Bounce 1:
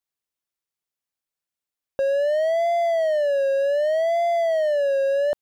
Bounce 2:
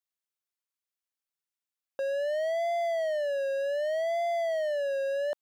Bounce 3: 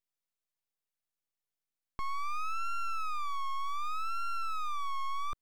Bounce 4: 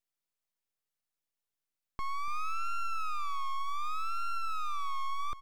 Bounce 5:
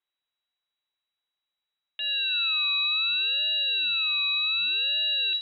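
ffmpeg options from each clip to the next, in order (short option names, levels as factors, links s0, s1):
-af "highpass=f=750:p=1,volume=0.596"
-af "asubboost=boost=6:cutoff=250,aeval=exprs='abs(val(0))':c=same"
-af "aecho=1:1:290:0.188"
-af "lowpass=f=3300:t=q:w=0.5098,lowpass=f=3300:t=q:w=0.6013,lowpass=f=3300:t=q:w=0.9,lowpass=f=3300:t=q:w=2.563,afreqshift=-3900,volume=1.78"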